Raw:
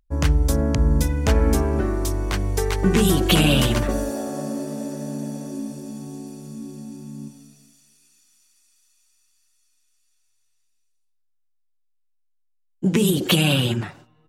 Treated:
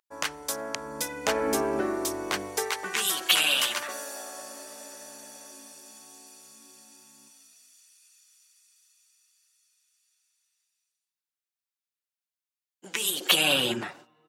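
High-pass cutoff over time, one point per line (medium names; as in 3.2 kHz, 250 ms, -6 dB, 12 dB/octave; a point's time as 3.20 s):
0.76 s 830 Hz
1.64 s 360 Hz
2.39 s 360 Hz
2.92 s 1.2 kHz
13.02 s 1.2 kHz
13.73 s 330 Hz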